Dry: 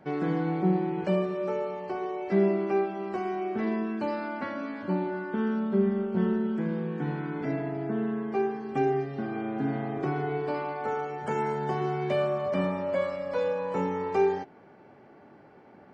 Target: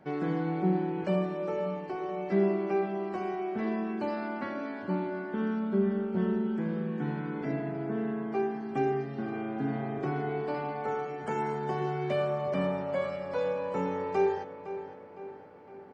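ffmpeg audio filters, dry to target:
-filter_complex "[0:a]asplit=2[s0][s1];[s1]adelay=510,lowpass=f=3900:p=1,volume=0.251,asplit=2[s2][s3];[s3]adelay=510,lowpass=f=3900:p=1,volume=0.54,asplit=2[s4][s5];[s5]adelay=510,lowpass=f=3900:p=1,volume=0.54,asplit=2[s6][s7];[s7]adelay=510,lowpass=f=3900:p=1,volume=0.54,asplit=2[s8][s9];[s9]adelay=510,lowpass=f=3900:p=1,volume=0.54,asplit=2[s10][s11];[s11]adelay=510,lowpass=f=3900:p=1,volume=0.54[s12];[s0][s2][s4][s6][s8][s10][s12]amix=inputs=7:normalize=0,volume=0.75"

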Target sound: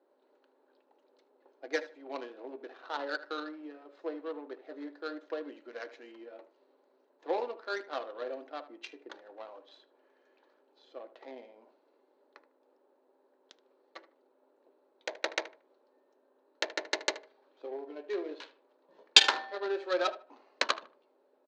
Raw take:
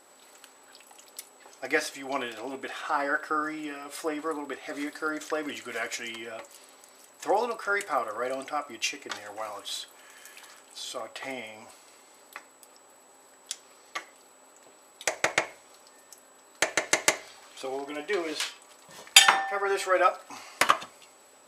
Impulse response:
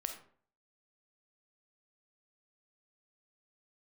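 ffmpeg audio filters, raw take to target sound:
-filter_complex "[0:a]adynamicsmooth=sensitivity=1:basefreq=750,aeval=exprs='0.631*(cos(1*acos(clip(val(0)/0.631,-1,1)))-cos(1*PI/2))+0.2*(cos(2*acos(clip(val(0)/0.631,-1,1)))-cos(2*PI/2))':c=same,highpass=f=310:w=0.5412,highpass=f=310:w=1.3066,equalizer=f=740:t=q:w=4:g=-7,equalizer=f=1200:t=q:w=4:g=-8,equalizer=f=2100:t=q:w=4:g=-5,equalizer=f=4100:t=q:w=4:g=9,equalizer=f=6400:t=q:w=4:g=3,lowpass=f=6700:w=0.5412,lowpass=f=6700:w=1.3066,asplit=2[s0][s1];[s1]adelay=76,lowpass=f=2300:p=1,volume=0.2,asplit=2[s2][s3];[s3]adelay=76,lowpass=f=2300:p=1,volume=0.26,asplit=2[s4][s5];[s5]adelay=76,lowpass=f=2300:p=1,volume=0.26[s6];[s2][s4][s6]amix=inputs=3:normalize=0[s7];[s0][s7]amix=inputs=2:normalize=0,volume=0.668"

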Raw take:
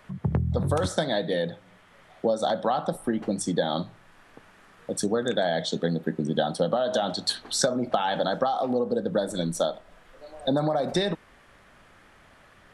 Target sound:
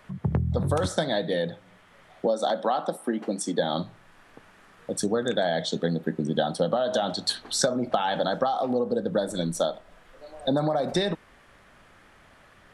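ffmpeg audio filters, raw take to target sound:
-filter_complex "[0:a]asettb=1/sr,asplit=3[s0][s1][s2];[s0]atrim=end=2.264[s3];[s1]atrim=start=2.26:end=3.59,asetpts=PTS-STARTPTS,afade=t=in:d=0.004:c=qsin,afade=t=out:st=1.326:d=0.004:c=qsin,highpass=f=210:w=0.5412,highpass=f=210:w=1.3066[s4];[s2]atrim=start=3.586[s5];[s3][s4]acrossfade=d=0.004:c1=hsin:c2=qsin[s6];[s6][s5]acrossfade=d=0.004:c1=qsin:c2=hsin"

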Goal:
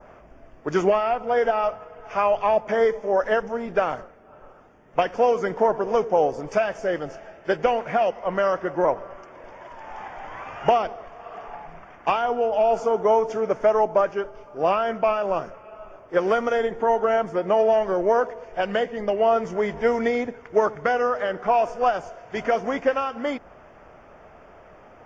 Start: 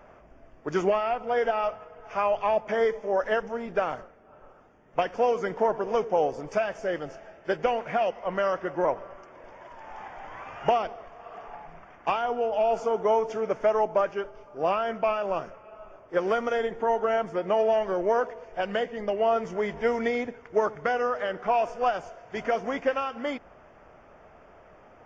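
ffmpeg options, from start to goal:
-af "adynamicequalizer=threshold=0.00501:dfrequency=2800:dqfactor=1.1:tfrequency=2800:tqfactor=1.1:attack=5:release=100:ratio=0.375:range=2:mode=cutabove:tftype=bell,volume=1.68"

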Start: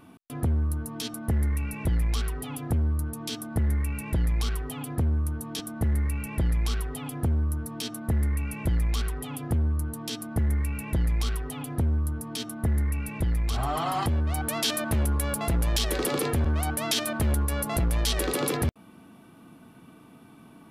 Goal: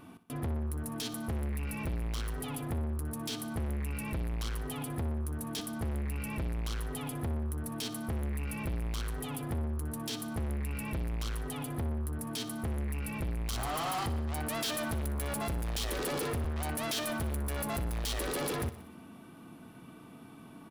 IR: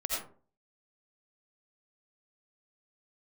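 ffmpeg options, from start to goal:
-filter_complex "[0:a]asettb=1/sr,asplit=3[s0][s1][s2];[s0]atrim=end=13.454[s3];[s1]atrim=start=13.45:end=14.03,asetpts=PTS-STARTPTS,afade=t=in:d=0.004:c=qsin,afade=t=out:st=0.576:d=0.004:c=qsin,highshelf=f=4400:g=10.5[s4];[s2]atrim=start=14.026[s5];[s3][s4]acrossfade=d=0.004:c1=hsin:c2=qsin[s6];[s6][s5]acrossfade=d=0.004:c1=qsin:c2=hsin,asoftclip=type=tanh:threshold=0.0266,aecho=1:1:61|122|183|244|305|366:0.188|0.111|0.0656|0.0387|0.0228|0.0135"

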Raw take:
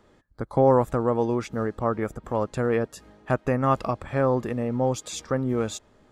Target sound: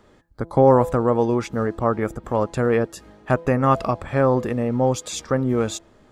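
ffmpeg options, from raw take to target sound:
-af "bandreject=f=167.3:t=h:w=4,bandreject=f=334.6:t=h:w=4,bandreject=f=501.9:t=h:w=4,bandreject=f=669.2:t=h:w=4,bandreject=f=836.5:t=h:w=4,bandreject=f=1003.8:t=h:w=4,volume=1.68"

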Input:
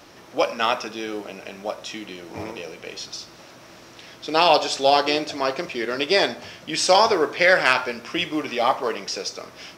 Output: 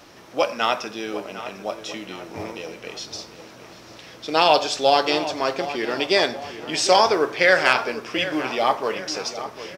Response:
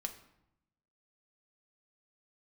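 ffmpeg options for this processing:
-filter_complex "[0:a]asplit=2[s0][s1];[s1]adelay=750,lowpass=f=2600:p=1,volume=0.237,asplit=2[s2][s3];[s3]adelay=750,lowpass=f=2600:p=1,volume=0.52,asplit=2[s4][s5];[s5]adelay=750,lowpass=f=2600:p=1,volume=0.52,asplit=2[s6][s7];[s7]adelay=750,lowpass=f=2600:p=1,volume=0.52,asplit=2[s8][s9];[s9]adelay=750,lowpass=f=2600:p=1,volume=0.52[s10];[s0][s2][s4][s6][s8][s10]amix=inputs=6:normalize=0"

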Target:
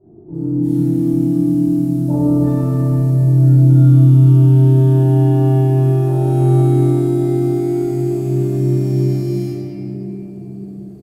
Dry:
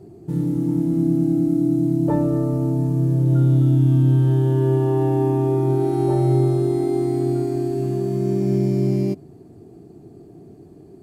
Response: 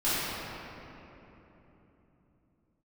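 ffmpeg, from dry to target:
-filter_complex "[0:a]highshelf=f=3700:g=-7,acrossover=split=1100[s0][s1];[s1]adelay=340[s2];[s0][s2]amix=inputs=2:normalize=0[s3];[1:a]atrim=start_sample=2205[s4];[s3][s4]afir=irnorm=-1:irlink=0,crystalizer=i=4:c=0,volume=0.282"

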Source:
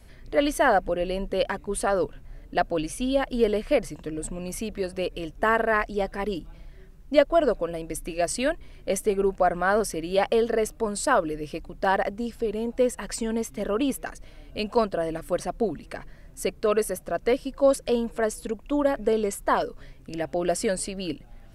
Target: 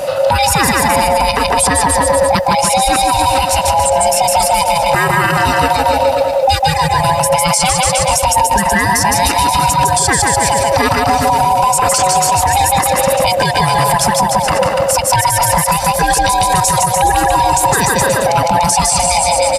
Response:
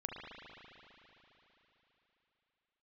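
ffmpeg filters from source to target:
-filter_complex "[0:a]afftfilt=real='real(if(lt(b,1008),b+24*(1-2*mod(floor(b/24),2)),b),0)':imag='imag(if(lt(b,1008),b+24*(1-2*mod(floor(b/24),2)),b),0)':win_size=2048:overlap=0.75,highpass=63,acrossover=split=3700[s0][s1];[s0]acompressor=threshold=0.0178:ratio=5[s2];[s2][s1]amix=inputs=2:normalize=0,aecho=1:1:170|323|460.7|584.6|696.2:0.631|0.398|0.251|0.158|0.1,atempo=1.1,acrossover=split=490|7000[s3][s4][s5];[s3]acompressor=threshold=0.00562:ratio=4[s6];[s4]acompressor=threshold=0.0126:ratio=4[s7];[s5]acompressor=threshold=0.00708:ratio=4[s8];[s6][s7][s8]amix=inputs=3:normalize=0,alimiter=level_in=37.6:limit=0.891:release=50:level=0:latency=1,volume=0.794"

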